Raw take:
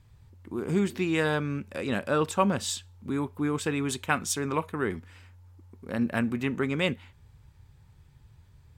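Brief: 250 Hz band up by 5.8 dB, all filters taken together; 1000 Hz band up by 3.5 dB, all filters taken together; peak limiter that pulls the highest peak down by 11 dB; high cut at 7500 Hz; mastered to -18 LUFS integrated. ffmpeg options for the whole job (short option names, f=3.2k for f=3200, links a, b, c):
-af "lowpass=7.5k,equalizer=f=250:t=o:g=7,equalizer=f=1k:t=o:g=4,volume=10.5dB,alimiter=limit=-7.5dB:level=0:latency=1"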